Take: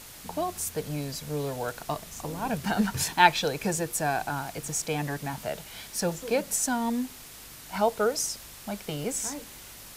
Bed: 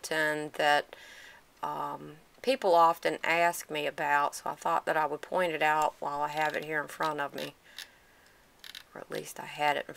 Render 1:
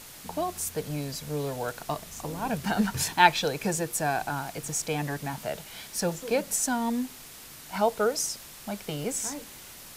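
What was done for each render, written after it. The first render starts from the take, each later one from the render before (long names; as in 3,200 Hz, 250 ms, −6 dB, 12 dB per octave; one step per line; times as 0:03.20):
hum removal 50 Hz, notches 2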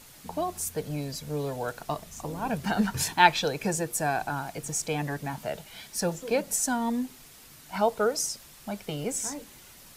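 broadband denoise 6 dB, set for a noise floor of −46 dBFS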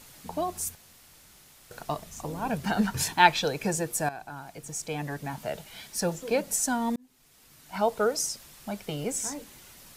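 0:00.75–0:01.71: fill with room tone
0:04.09–0:05.55: fade in, from −13.5 dB
0:06.96–0:07.96: fade in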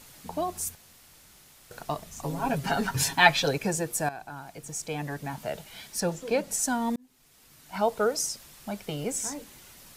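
0:02.22–0:03.58: comb filter 7.3 ms, depth 87%
0:06.00–0:06.59: high-shelf EQ 12,000 Hz −8.5 dB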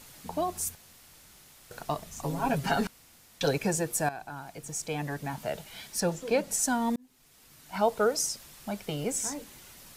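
0:02.87–0:03.41: fill with room tone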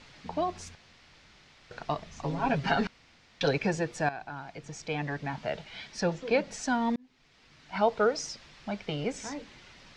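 low-pass filter 5,100 Hz 24 dB per octave
parametric band 2,100 Hz +4 dB 0.8 octaves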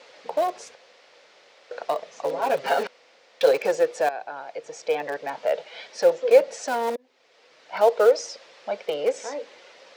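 in parallel at −11.5 dB: wrap-around overflow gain 23.5 dB
on the sum: high-pass with resonance 510 Hz, resonance Q 4.9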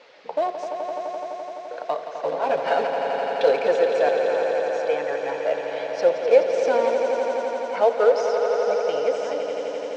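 high-frequency loss of the air 120 metres
echo that builds up and dies away 85 ms, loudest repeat 5, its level −9 dB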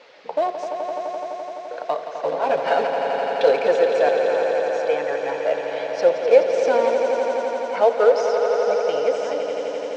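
level +2 dB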